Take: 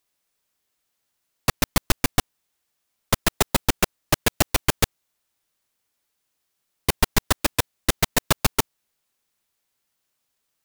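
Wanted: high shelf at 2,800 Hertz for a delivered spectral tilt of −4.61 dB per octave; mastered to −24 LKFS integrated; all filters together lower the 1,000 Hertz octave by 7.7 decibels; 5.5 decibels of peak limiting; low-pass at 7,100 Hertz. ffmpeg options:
ffmpeg -i in.wav -af "lowpass=7100,equalizer=frequency=1000:width_type=o:gain=-9,highshelf=frequency=2800:gain=-8,volume=7dB,alimiter=limit=-4.5dB:level=0:latency=1" out.wav

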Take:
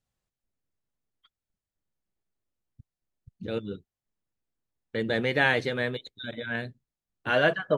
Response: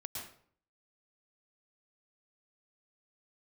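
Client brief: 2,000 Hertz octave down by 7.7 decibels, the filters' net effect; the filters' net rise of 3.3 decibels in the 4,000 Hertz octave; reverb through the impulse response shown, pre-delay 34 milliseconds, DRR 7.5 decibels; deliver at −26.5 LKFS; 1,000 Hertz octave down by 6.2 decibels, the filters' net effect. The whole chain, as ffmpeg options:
-filter_complex "[0:a]equalizer=frequency=1000:width_type=o:gain=-7.5,equalizer=frequency=2000:width_type=o:gain=-9,equalizer=frequency=4000:width_type=o:gain=8.5,asplit=2[link_01][link_02];[1:a]atrim=start_sample=2205,adelay=34[link_03];[link_02][link_03]afir=irnorm=-1:irlink=0,volume=-6.5dB[link_04];[link_01][link_04]amix=inputs=2:normalize=0,volume=4dB"

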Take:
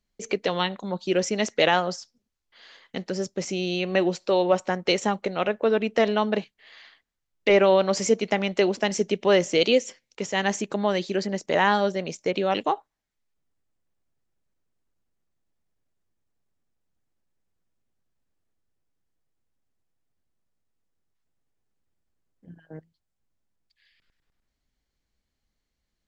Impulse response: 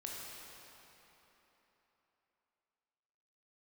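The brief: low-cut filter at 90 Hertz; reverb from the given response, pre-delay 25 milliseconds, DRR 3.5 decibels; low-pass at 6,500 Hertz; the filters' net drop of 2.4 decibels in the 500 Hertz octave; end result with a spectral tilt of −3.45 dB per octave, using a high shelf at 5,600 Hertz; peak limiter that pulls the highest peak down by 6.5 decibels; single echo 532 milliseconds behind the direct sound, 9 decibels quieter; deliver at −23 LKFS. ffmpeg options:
-filter_complex "[0:a]highpass=90,lowpass=6500,equalizer=frequency=500:width_type=o:gain=-3,highshelf=frequency=5600:gain=-4,alimiter=limit=-14dB:level=0:latency=1,aecho=1:1:532:0.355,asplit=2[link_01][link_02];[1:a]atrim=start_sample=2205,adelay=25[link_03];[link_02][link_03]afir=irnorm=-1:irlink=0,volume=-3dB[link_04];[link_01][link_04]amix=inputs=2:normalize=0,volume=3dB"

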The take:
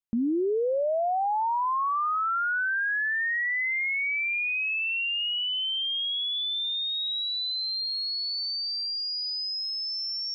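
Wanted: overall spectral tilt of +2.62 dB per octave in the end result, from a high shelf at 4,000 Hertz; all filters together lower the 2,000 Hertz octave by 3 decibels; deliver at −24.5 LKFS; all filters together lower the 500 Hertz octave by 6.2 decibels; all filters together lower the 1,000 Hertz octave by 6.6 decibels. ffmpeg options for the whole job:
ffmpeg -i in.wav -af "equalizer=frequency=500:width_type=o:gain=-6,equalizer=frequency=1000:width_type=o:gain=-6.5,equalizer=frequency=2000:width_type=o:gain=-3,highshelf=frequency=4000:gain=5,volume=2.5dB" out.wav

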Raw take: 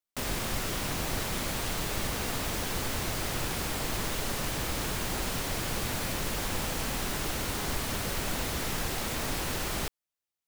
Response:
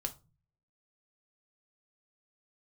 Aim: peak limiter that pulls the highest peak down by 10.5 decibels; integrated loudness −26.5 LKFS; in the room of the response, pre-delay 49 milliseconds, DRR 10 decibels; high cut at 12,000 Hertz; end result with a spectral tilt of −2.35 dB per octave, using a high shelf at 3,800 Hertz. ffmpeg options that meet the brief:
-filter_complex "[0:a]lowpass=12000,highshelf=frequency=3800:gain=9,alimiter=level_in=2dB:limit=-24dB:level=0:latency=1,volume=-2dB,asplit=2[link_01][link_02];[1:a]atrim=start_sample=2205,adelay=49[link_03];[link_02][link_03]afir=irnorm=-1:irlink=0,volume=-10dB[link_04];[link_01][link_04]amix=inputs=2:normalize=0,volume=7dB"

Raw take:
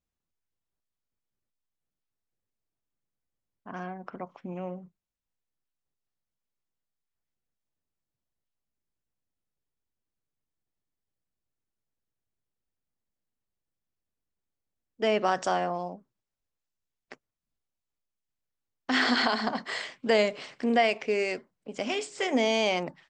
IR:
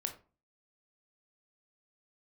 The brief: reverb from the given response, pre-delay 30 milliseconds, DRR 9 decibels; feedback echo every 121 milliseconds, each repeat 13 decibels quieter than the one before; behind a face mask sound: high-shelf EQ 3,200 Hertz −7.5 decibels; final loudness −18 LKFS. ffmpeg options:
-filter_complex "[0:a]aecho=1:1:121|242|363:0.224|0.0493|0.0108,asplit=2[link_01][link_02];[1:a]atrim=start_sample=2205,adelay=30[link_03];[link_02][link_03]afir=irnorm=-1:irlink=0,volume=-9dB[link_04];[link_01][link_04]amix=inputs=2:normalize=0,highshelf=frequency=3200:gain=-7.5,volume=10dB"

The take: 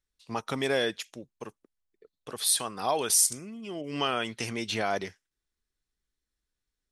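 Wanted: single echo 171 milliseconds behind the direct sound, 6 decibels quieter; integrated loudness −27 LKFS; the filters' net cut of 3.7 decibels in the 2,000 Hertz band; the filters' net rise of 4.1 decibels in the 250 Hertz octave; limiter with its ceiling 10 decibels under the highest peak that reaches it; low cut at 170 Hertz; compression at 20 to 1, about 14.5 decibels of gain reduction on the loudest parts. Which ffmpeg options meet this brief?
ffmpeg -i in.wav -af "highpass=170,equalizer=frequency=250:width_type=o:gain=6,equalizer=frequency=2000:width_type=o:gain=-5,acompressor=threshold=-33dB:ratio=20,alimiter=level_in=7.5dB:limit=-24dB:level=0:latency=1,volume=-7.5dB,aecho=1:1:171:0.501,volume=14dB" out.wav

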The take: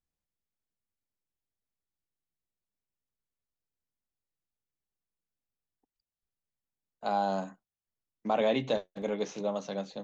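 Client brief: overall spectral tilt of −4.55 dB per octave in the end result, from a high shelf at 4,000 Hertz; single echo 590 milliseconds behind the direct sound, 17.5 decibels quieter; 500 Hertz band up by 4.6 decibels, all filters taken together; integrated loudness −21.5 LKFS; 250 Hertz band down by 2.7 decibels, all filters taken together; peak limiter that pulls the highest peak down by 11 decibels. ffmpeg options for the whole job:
ffmpeg -i in.wav -af "equalizer=frequency=250:width_type=o:gain=-5,equalizer=frequency=500:width_type=o:gain=6.5,highshelf=frequency=4000:gain=5.5,alimiter=limit=-24dB:level=0:latency=1,aecho=1:1:590:0.133,volume=13.5dB" out.wav

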